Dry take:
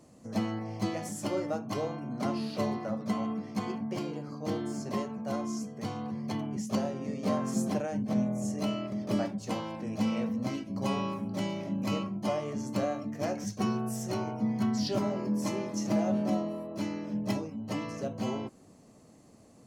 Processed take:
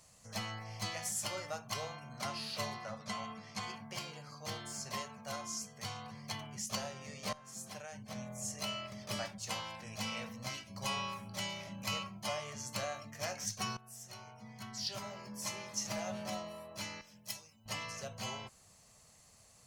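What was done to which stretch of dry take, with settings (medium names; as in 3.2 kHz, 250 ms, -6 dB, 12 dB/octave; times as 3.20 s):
2.83–3.63 s: low-pass 8.8 kHz
7.33–9.09 s: fade in equal-power, from -19 dB
13.77–16.23 s: fade in, from -16.5 dB
17.01–17.66 s: pre-emphasis filter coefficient 0.8
whole clip: amplifier tone stack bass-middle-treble 10-0-10; trim +6 dB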